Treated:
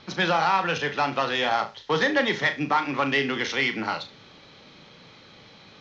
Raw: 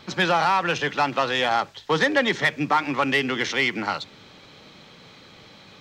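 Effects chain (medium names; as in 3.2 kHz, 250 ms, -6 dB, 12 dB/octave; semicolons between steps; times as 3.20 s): steep low-pass 6.5 kHz 48 dB/octave; on a send: flutter echo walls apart 6.2 m, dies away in 0.25 s; on the sum: trim -2.5 dB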